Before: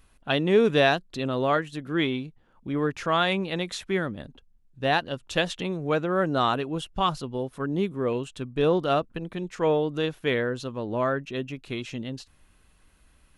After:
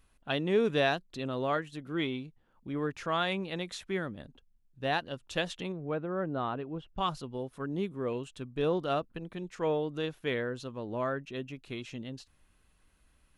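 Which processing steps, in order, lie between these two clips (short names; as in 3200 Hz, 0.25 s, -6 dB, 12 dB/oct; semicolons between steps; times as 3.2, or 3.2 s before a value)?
1.77–2.24 notch 1700 Hz, Q 9.8; 5.72–6.98 tape spacing loss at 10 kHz 35 dB; gain -7 dB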